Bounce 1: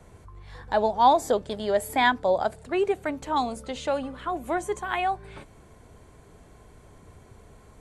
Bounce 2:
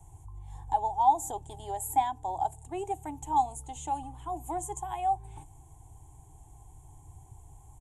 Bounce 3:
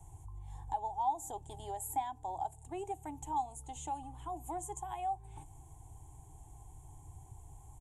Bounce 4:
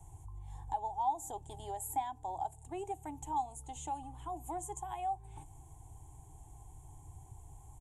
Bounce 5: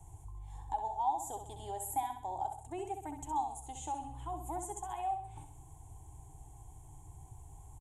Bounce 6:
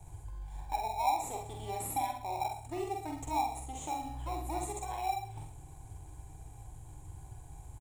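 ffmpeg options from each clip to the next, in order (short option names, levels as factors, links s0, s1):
-af "alimiter=limit=0.2:level=0:latency=1:release=307,firequalizer=gain_entry='entry(140,0);entry(200,-29);entry(300,-7);entry(550,-27);entry(800,4);entry(1300,-25);entry(3200,-13);entry(4600,-26);entry(6900,3);entry(14000,0)':delay=0.05:min_phase=1,volume=1.19"
-af "acompressor=threshold=0.00562:ratio=1.5,volume=0.891"
-af anull
-af "aecho=1:1:65|130|195|260|325:0.422|0.181|0.078|0.0335|0.0144"
-filter_complex "[0:a]asplit=2[s0][s1];[s1]acrusher=samples=28:mix=1:aa=0.000001,volume=0.447[s2];[s0][s2]amix=inputs=2:normalize=0,asplit=2[s3][s4];[s4]adelay=46,volume=0.596[s5];[s3][s5]amix=inputs=2:normalize=0"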